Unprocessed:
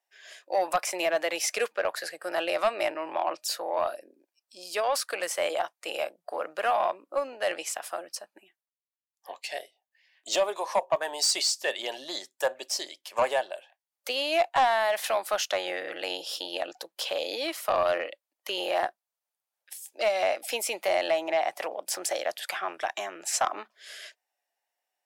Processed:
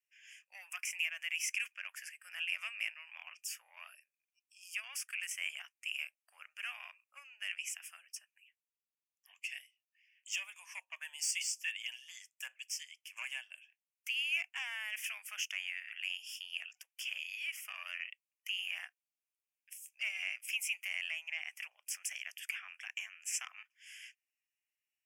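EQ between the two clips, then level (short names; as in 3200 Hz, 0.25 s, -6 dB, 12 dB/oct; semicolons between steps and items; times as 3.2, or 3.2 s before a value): ladder high-pass 2200 Hz, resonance 55%; Butterworth band-stop 4000 Hz, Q 1.5; +2.0 dB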